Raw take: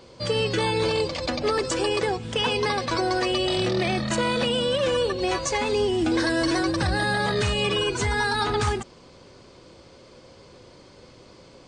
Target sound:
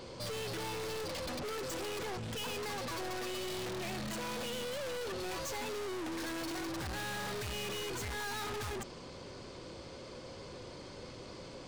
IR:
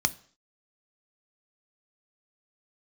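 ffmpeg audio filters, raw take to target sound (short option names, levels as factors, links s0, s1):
-af "aeval=exprs='(tanh(112*val(0)+0.2)-tanh(0.2))/112':c=same,volume=1.33"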